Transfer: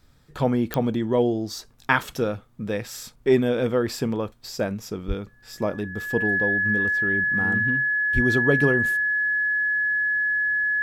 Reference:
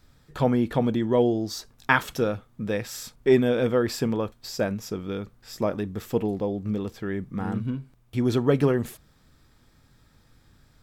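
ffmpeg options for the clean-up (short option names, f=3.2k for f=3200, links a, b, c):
-filter_complex "[0:a]adeclick=t=4,bandreject=f=1.7k:w=30,asplit=3[a][b][c];[a]afade=t=out:st=5.07:d=0.02[d];[b]highpass=f=140:w=0.5412,highpass=f=140:w=1.3066,afade=t=in:st=5.07:d=0.02,afade=t=out:st=5.19:d=0.02[e];[c]afade=t=in:st=5.19:d=0.02[f];[d][e][f]amix=inputs=3:normalize=0,asplit=3[g][h][i];[g]afade=t=out:st=8.14:d=0.02[j];[h]highpass=f=140:w=0.5412,highpass=f=140:w=1.3066,afade=t=in:st=8.14:d=0.02,afade=t=out:st=8.26:d=0.02[k];[i]afade=t=in:st=8.26:d=0.02[l];[j][k][l]amix=inputs=3:normalize=0"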